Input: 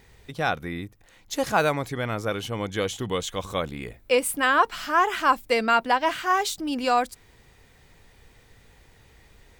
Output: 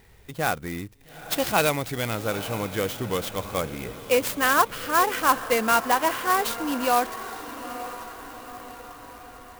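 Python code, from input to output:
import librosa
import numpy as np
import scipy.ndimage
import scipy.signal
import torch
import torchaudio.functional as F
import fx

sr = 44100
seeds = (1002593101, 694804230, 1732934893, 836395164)

y = fx.high_shelf_res(x, sr, hz=2100.0, db=6.0, q=1.5, at=(0.85, 2.15))
y = fx.echo_diffused(y, sr, ms=900, feedback_pct=55, wet_db=-13.0)
y = fx.clock_jitter(y, sr, seeds[0], jitter_ms=0.041)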